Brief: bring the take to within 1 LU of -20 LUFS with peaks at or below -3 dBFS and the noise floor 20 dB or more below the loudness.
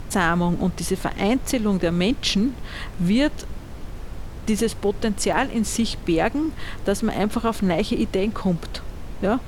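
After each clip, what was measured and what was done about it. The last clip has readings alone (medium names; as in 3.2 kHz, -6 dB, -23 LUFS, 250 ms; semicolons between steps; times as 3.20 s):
dropouts 2; longest dropout 1.8 ms; noise floor -36 dBFS; noise floor target -43 dBFS; loudness -23.0 LUFS; peak level -5.5 dBFS; loudness target -20.0 LUFS
-> interpolate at 1.91/5.33 s, 1.8 ms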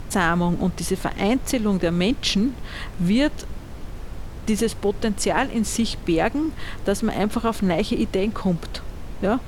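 dropouts 0; noise floor -36 dBFS; noise floor target -43 dBFS
-> noise print and reduce 7 dB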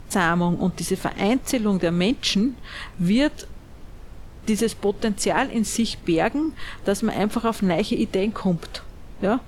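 noise floor -42 dBFS; noise floor target -43 dBFS
-> noise print and reduce 6 dB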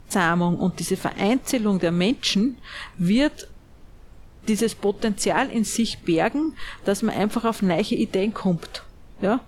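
noise floor -48 dBFS; loudness -23.0 LUFS; peak level -6.5 dBFS; loudness target -20.0 LUFS
-> trim +3 dB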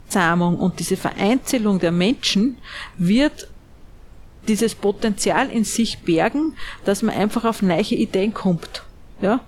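loudness -20.0 LUFS; peak level -3.5 dBFS; noise floor -45 dBFS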